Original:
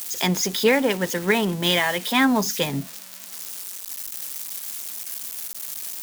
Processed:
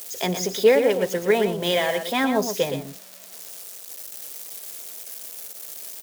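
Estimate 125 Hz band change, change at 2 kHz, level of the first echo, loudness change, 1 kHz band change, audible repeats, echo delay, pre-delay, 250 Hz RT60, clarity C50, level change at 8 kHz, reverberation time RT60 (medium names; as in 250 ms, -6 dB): -4.5 dB, -4.5 dB, -8.5 dB, -0.5 dB, -1.5 dB, 1, 117 ms, no reverb, no reverb, no reverb, -4.5 dB, no reverb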